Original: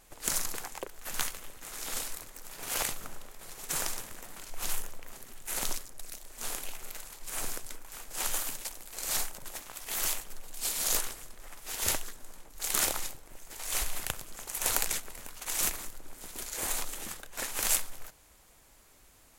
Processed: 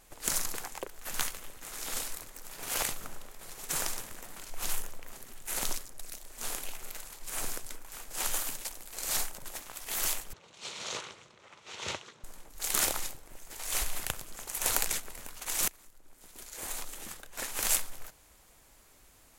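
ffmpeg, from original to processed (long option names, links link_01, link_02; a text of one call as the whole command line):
ffmpeg -i in.wav -filter_complex "[0:a]asettb=1/sr,asplit=3[link_01][link_02][link_03];[link_01]atrim=end=10.334[link_04];[link_02]atrim=start=10.33:end=12.24,asetpts=PTS-STARTPTS,afade=type=in:duration=0.004:curve=qsin,afade=type=out:start_time=1.906:duration=0.004:curve=qsin,highpass=frequency=100:width=0.5412,highpass=frequency=100:width=1.3066,equalizer=frequency=270:width_type=q:width=4:gain=-10,equalizer=frequency=720:width_type=q:width=4:gain=-6,equalizer=frequency=1700:width_type=q:width=4:gain=-6,equalizer=frequency=4900:width_type=q:width=4:gain=-7,lowpass=frequency=5400:width=0.5412,lowpass=frequency=5400:width=1.3066[link_05];[link_03]atrim=start=12.236[link_06];[link_04][link_05]acrossfade=duration=0.004:curve1=hsin:curve2=qsin[link_07];[link_07][link_06]acrossfade=duration=0.004:curve1=qsin:curve2=hsin,asplit=2[link_08][link_09];[link_08]atrim=end=15.68,asetpts=PTS-STARTPTS,afade=type=out:start_time=15.676:duration=0.004:curve=hsin:silence=0.0891251[link_10];[link_09]atrim=start=15.68,asetpts=PTS-STARTPTS,afade=type=in:duration=2.12:silence=0.0891251[link_11];[link_10][link_11]concat=n=2:v=0:a=1" out.wav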